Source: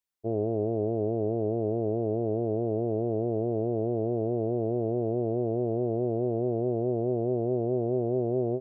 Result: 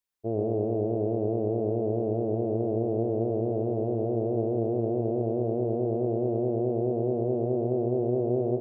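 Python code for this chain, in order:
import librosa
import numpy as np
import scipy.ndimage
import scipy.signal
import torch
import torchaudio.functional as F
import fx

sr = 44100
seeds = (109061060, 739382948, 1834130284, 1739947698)

y = x + 10.0 ** (-6.5 / 20.0) * np.pad(x, (int(118 * sr / 1000.0), 0))[:len(x)]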